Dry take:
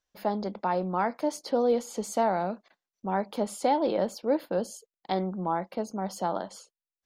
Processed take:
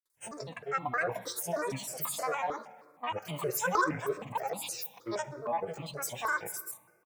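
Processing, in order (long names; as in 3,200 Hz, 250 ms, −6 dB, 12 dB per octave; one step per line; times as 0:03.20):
spectrum averaged block by block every 50 ms
RIAA equalisation recording
comb filter 3.4 ms, depth 78%
in parallel at −3 dB: downward compressor, threshold −34 dBFS, peak gain reduction 14 dB
on the sum: granular cloud, pitch spread up and down by 12 semitones
on a send at −14 dB: convolution reverb RT60 1.7 s, pre-delay 6 ms
on the sum: step-sequenced phaser 6.4 Hz 730–1,600 Hz
level −2 dB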